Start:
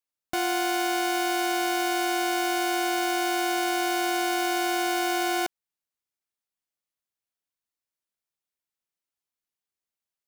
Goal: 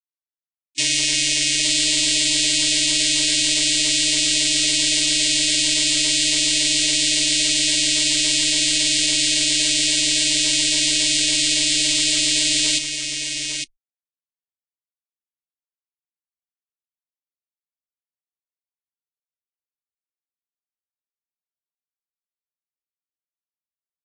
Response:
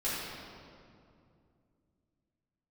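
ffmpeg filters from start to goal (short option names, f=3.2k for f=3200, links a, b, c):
-filter_complex "[0:a]aexciter=amount=6.2:drive=4.9:freq=5.4k,bass=f=250:g=-12,treble=f=4k:g=14,asplit=2[a][b];[b]alimiter=limit=-1dB:level=0:latency=1:release=108,volume=1dB[c];[a][c]amix=inputs=2:normalize=0,asoftclip=type=tanh:threshold=-1dB,afreqshift=-25,asoftclip=type=hard:threshold=-2dB,afftfilt=real='re*gte(hypot(re,im),0.1)':imag='im*gte(hypot(re,im),0.1)':win_size=1024:overlap=0.75,asplit=2[d][e];[e]aecho=0:1:365:0.473[f];[d][f]amix=inputs=2:normalize=0,asetrate=18846,aresample=44100,volume=-8.5dB"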